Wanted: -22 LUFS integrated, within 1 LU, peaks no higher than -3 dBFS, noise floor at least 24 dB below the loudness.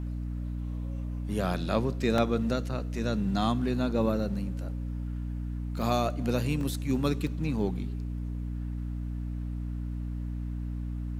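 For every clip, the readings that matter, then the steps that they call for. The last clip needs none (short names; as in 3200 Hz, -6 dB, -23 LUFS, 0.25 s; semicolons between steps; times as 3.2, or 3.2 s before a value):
dropouts 5; longest dropout 2.1 ms; hum 60 Hz; harmonics up to 300 Hz; hum level -31 dBFS; loudness -31.5 LUFS; peak -11.5 dBFS; loudness target -22.0 LUFS
-> interpolate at 1.54/2.18/5.82/6.61/7.27, 2.1 ms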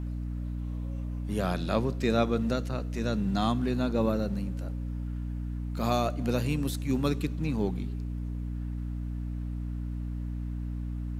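dropouts 0; hum 60 Hz; harmonics up to 300 Hz; hum level -31 dBFS
-> notches 60/120/180/240/300 Hz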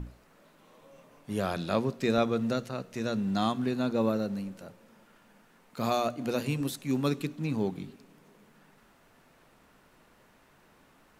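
hum none; loudness -30.5 LUFS; peak -12.0 dBFS; loudness target -22.0 LUFS
-> gain +8.5 dB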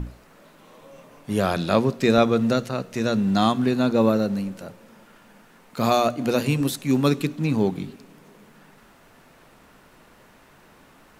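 loudness -22.0 LUFS; peak -3.5 dBFS; noise floor -53 dBFS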